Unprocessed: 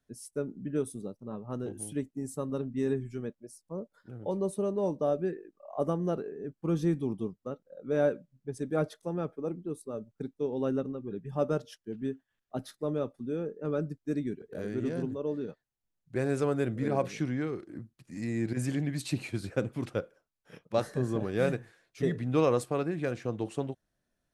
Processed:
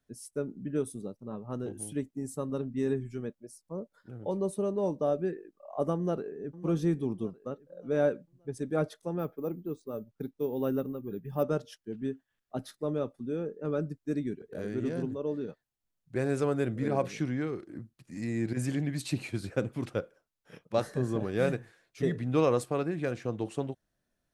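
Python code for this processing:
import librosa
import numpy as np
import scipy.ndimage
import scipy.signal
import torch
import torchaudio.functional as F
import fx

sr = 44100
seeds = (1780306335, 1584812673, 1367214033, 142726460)

y = fx.echo_throw(x, sr, start_s=5.95, length_s=0.58, ms=580, feedback_pct=40, wet_db=-13.5)
y = fx.resample_bad(y, sr, factor=3, down='filtered', up='hold', at=(9.19, 11.43))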